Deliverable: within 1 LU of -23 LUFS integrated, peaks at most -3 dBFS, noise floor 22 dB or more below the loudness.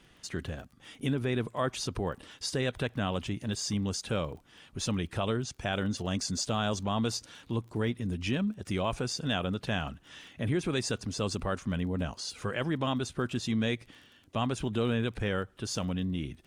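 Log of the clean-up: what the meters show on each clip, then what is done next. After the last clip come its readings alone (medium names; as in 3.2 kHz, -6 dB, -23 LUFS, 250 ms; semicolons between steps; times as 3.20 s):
tick rate 25 per s; loudness -32.5 LUFS; peak level -17.0 dBFS; loudness target -23.0 LUFS
-> de-click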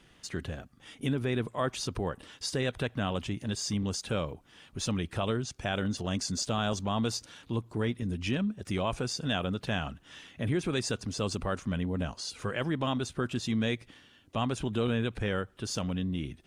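tick rate 0 per s; loudness -32.5 LUFS; peak level -17.0 dBFS; loudness target -23.0 LUFS
-> trim +9.5 dB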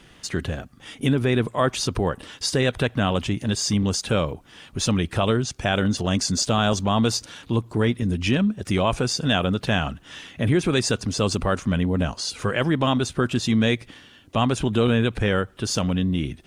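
loudness -23.0 LUFS; peak level -7.5 dBFS; noise floor -51 dBFS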